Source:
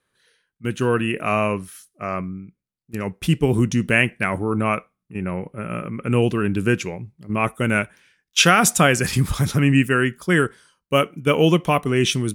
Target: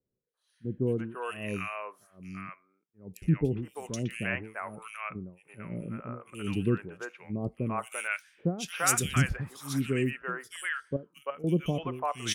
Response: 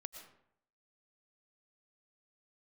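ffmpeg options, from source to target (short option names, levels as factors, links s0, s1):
-filter_complex "[0:a]asettb=1/sr,asplit=3[s0][s1][s2];[s0]atrim=end=7.444[s3];[s1]atrim=start=7.44:end=8.43,asetpts=PTS-STARTPTS,afade=t=in:d=0.004:c=qsin,afade=t=out:st=0.986:d=0.004:c=qsin,highshelf=f=3000:g=11[s4];[s2]atrim=start=8.426[s5];[s3][s4]acrossfade=d=0.004:c1=hsin:c2=qsin[s6];[s6][s5]acrossfade=d=0.004:c1=qsin:c2=hsin,asettb=1/sr,asplit=3[s7][s8][s9];[s7]atrim=end=10.964[s10];[s8]atrim=start=10.96:end=11.44,asetpts=PTS-STARTPTS,afade=t=in:d=0.004:c=qsin,afade=t=out:st=0.476:d=0.004:c=qsin,acompressor=threshold=0.0447:ratio=5[s11];[s9]atrim=start=11.436[s12];[s10][s11]acrossfade=d=0.004:c1=hsin:c2=qsin[s13];[s13][s12]acrossfade=d=0.004:c1=qsin:c2=hsin,acrossover=split=1400[s14][s15];[s14]aeval=exprs='val(0)*(1-1/2+1/2*cos(2*PI*1.2*n/s))':c=same[s16];[s15]aeval=exprs='val(0)*(1-1/2-1/2*cos(2*PI*1.2*n/s))':c=same[s17];[s16][s17]amix=inputs=2:normalize=0,acrossover=split=580|2900[s18][s19][s20];[s20]adelay=220[s21];[s19]adelay=340[s22];[s18][s22][s21]amix=inputs=3:normalize=0,volume=0.501"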